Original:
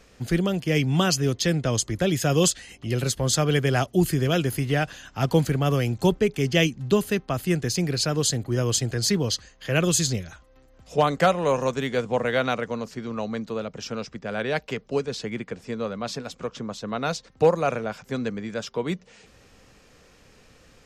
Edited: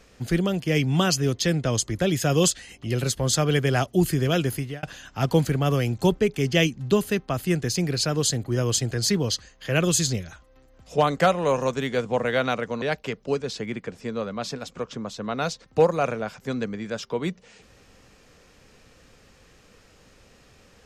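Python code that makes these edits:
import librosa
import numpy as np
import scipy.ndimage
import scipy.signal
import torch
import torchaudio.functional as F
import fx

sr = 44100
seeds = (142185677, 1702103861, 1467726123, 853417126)

y = fx.edit(x, sr, fx.fade_out_span(start_s=4.51, length_s=0.32),
    fx.cut(start_s=12.82, length_s=1.64), tone=tone)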